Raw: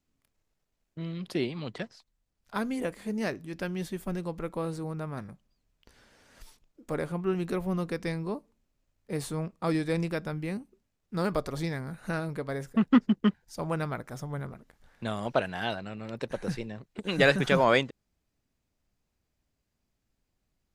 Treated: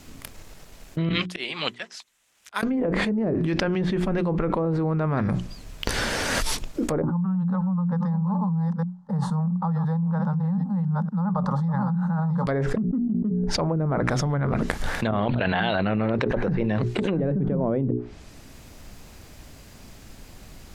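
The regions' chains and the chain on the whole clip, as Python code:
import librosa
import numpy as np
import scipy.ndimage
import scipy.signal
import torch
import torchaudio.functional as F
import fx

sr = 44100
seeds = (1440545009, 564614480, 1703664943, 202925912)

y = fx.chain(x, sr, fx.bandpass_q(hz=4600.0, q=0.79),
    fx.auto_swell(attack_ms=738.0),
    fx.peak_eq(hz=4600.0, db=-11.5, octaves=0.75), at=(1.09, 2.63))
y = fx.chain(y, sr, fx.reverse_delay(ms=452, wet_db=-11.5),
    fx.double_bandpass(hz=380.0, octaves=2.2),
    fx.fixed_phaser(hz=470.0, stages=8), at=(7.02, 12.47))
y = fx.chain(y, sr, fx.cheby1_lowpass(hz=4500.0, order=10),
    fx.over_compress(threshold_db=-39.0, ratio=-0.5), at=(15.11, 16.15))
y = fx.hum_notches(y, sr, base_hz=60, count=7)
y = fx.env_lowpass_down(y, sr, base_hz=310.0, full_db=-25.5)
y = fx.env_flatten(y, sr, amount_pct=100)
y = y * 10.0 ** (-5.5 / 20.0)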